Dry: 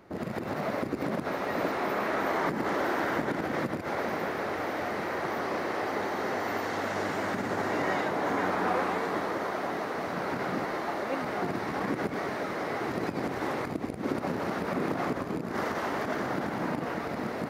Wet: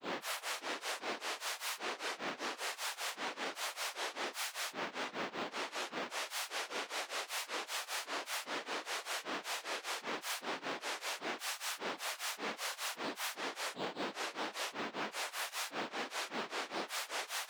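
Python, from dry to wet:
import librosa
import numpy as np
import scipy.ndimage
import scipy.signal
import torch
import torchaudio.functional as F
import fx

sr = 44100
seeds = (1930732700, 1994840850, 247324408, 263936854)

p1 = fx.over_compress(x, sr, threshold_db=-32.0, ratio=-0.5)
p2 = x + F.gain(torch.from_numpy(p1), -2.0).numpy()
p3 = fx.tube_stage(p2, sr, drive_db=38.0, bias=0.75)
p4 = fx.pitch_keep_formants(p3, sr, semitones=-6.5)
p5 = (np.kron(p4[::6], np.eye(6)[0]) * 6)[:len(p4)]
p6 = 10.0 ** (-31.5 / 20.0) * (np.abs((p5 / 10.0 ** (-31.5 / 20.0) + 3.0) % 4.0 - 2.0) - 1.0)
p7 = scipy.signal.sosfilt(scipy.signal.butter(4, 380.0, 'highpass', fs=sr, output='sos'), p6)
p8 = fx.spacing_loss(p7, sr, db_at_10k=21)
p9 = fx.granulator(p8, sr, seeds[0], grain_ms=234.0, per_s=5.1, spray_ms=100.0, spread_st=12)
y = F.gain(torch.from_numpy(p9), 17.5).numpy()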